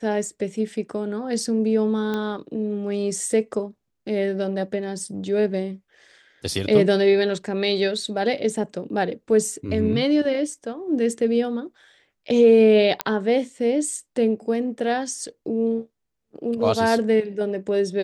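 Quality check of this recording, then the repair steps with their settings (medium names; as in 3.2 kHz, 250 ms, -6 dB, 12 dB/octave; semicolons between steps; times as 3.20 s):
2.14 s: pop -15 dBFS
13.01 s: pop -5 dBFS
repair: de-click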